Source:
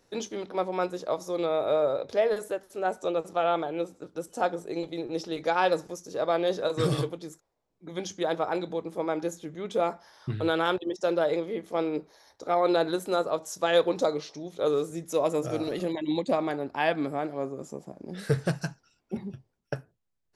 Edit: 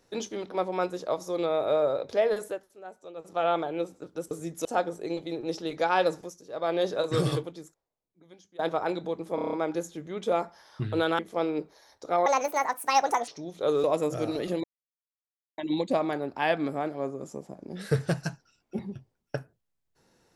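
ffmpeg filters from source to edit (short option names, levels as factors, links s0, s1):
-filter_complex "[0:a]asplit=19[s0][s1][s2][s3][s4][s5][s6][s7][s8][s9][s10][s11][s12][s13][s14][s15][s16][s17][s18];[s0]atrim=end=2.74,asetpts=PTS-STARTPTS,afade=t=out:st=2.44:d=0.3:silence=0.16788[s19];[s1]atrim=start=2.74:end=3.15,asetpts=PTS-STARTPTS,volume=0.168[s20];[s2]atrim=start=3.15:end=4.312,asetpts=PTS-STARTPTS,afade=t=in:d=0.3:silence=0.16788[s21];[s3]atrim=start=14.818:end=15.162[s22];[s4]atrim=start=4.308:end=6.12,asetpts=PTS-STARTPTS,afade=t=out:st=1.532:d=0.28:silence=0.266073[s23];[s5]atrim=start=6.12:end=6.15,asetpts=PTS-STARTPTS,volume=0.266[s24];[s6]atrim=start=6.15:end=8.25,asetpts=PTS-STARTPTS,afade=t=in:d=0.28:silence=0.266073,afade=t=out:st=0.88:d=1.22:c=qua:silence=0.0707946[s25];[s7]atrim=start=8.25:end=9.042,asetpts=PTS-STARTPTS,afade=t=in:d=0.004:c=hsin:silence=0.0707946[s26];[s8]atrim=start=9.008:end=9.042[s27];[s9]atrim=start=9.008:end=9.042[s28];[s10]atrim=start=9.008:end=9.042[s29];[s11]atrim=start=9.008:end=9.042[s30];[s12]atrim=start=9.008:end=9.042[s31];[s13]atrim=start=9.008:end=10.672[s32];[s14]atrim=start=11.568:end=12.644[s33];[s15]atrim=start=12.64:end=14.26,asetpts=PTS-STARTPTS,asetrate=70119,aresample=44100,atrim=end_sample=44932,asetpts=PTS-STARTPTS[s34];[s16]atrim=start=14.256:end=14.822[s35];[s17]atrim=start=15.158:end=15.96,asetpts=PTS-STARTPTS,afade=t=out:st=0.798:d=0.004:c=hsin,apad=pad_dur=0.94[s36];[s18]atrim=start=15.96,asetpts=PTS-STARTPTS,afade=t=in:d=0.004:c=hsin[s37];[s19][s20][s21]concat=n=3:v=0:a=1[s38];[s38][s22]acrossfade=d=0.004:c1=hsin:c2=hsin[s39];[s23][s24][s25][s26]concat=n=4:v=0:a=1[s40];[s39][s40]acrossfade=d=0.004:c1=hsin:c2=hsin[s41];[s41][s27]acrossfade=d=0.004:c1=hsin:c2=hsin[s42];[s42][s28]acrossfade=d=0.004:c1=hsin:c2=hsin[s43];[s43][s29]acrossfade=d=0.004:c1=hsin:c2=hsin[s44];[s44][s30]acrossfade=d=0.004:c1=hsin:c2=hsin[s45];[s45][s31]acrossfade=d=0.004:c1=hsin:c2=hsin[s46];[s46][s32]acrossfade=d=0.004:c1=hsin:c2=hsin[s47];[s47][s33]acrossfade=d=0.004:c1=hsin:c2=hsin[s48];[s48][s34]acrossfade=d=0.004:c1=hsin:c2=hsin[s49];[s49][s35]acrossfade=d=0.004:c1=hsin:c2=hsin[s50];[s36][s37]concat=n=2:v=0:a=1[s51];[s50][s51]acrossfade=d=0.004:c1=hsin:c2=hsin"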